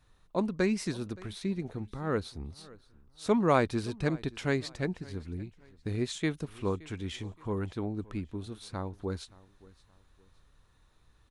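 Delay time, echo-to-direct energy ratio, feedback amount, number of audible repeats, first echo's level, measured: 571 ms, −21.5 dB, 33%, 2, −22.0 dB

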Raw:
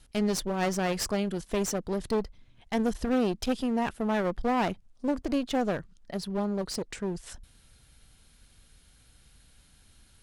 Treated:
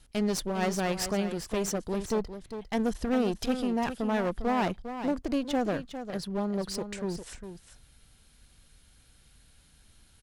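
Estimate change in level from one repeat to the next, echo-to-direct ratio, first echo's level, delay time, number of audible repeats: repeats not evenly spaced, −10.0 dB, −10.0 dB, 403 ms, 1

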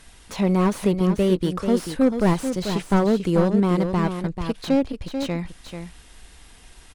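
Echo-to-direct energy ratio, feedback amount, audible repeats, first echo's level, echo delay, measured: −8.0 dB, repeats not evenly spaced, 1, −8.0 dB, 439 ms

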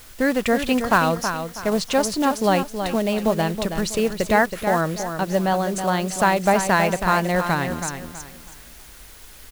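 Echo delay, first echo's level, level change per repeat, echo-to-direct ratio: 323 ms, −8.0 dB, −10.5 dB, −7.5 dB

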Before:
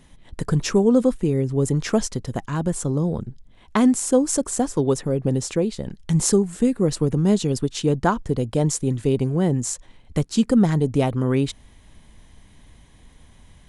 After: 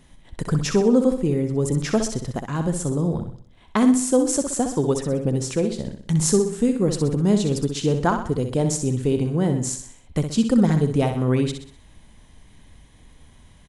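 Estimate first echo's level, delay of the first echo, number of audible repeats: −7.5 dB, 63 ms, 4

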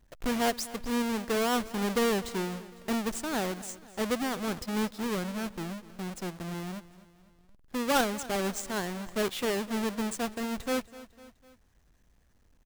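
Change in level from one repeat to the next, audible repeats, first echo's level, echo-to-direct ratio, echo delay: −5.5 dB, 3, −18.0 dB, −16.5 dB, 251 ms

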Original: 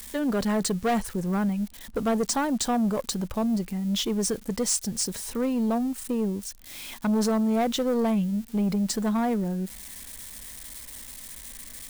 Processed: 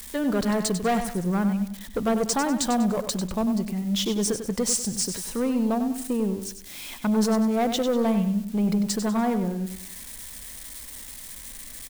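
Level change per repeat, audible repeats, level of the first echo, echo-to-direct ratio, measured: −8.5 dB, 4, −9.0 dB, −8.5 dB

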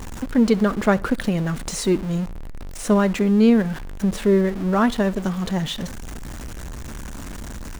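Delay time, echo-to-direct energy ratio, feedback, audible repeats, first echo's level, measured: 66 ms, −22.5 dB, 36%, 2, −23.0 dB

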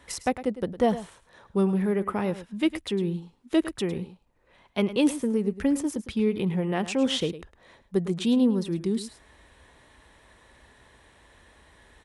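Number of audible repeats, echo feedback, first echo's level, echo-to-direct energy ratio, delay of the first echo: 1, repeats not evenly spaced, −14.0 dB, −14.0 dB, 106 ms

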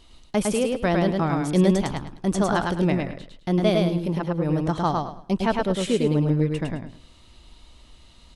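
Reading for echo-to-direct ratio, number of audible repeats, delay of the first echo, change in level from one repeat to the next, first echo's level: −2.5 dB, 3, 106 ms, −12.0 dB, −3.0 dB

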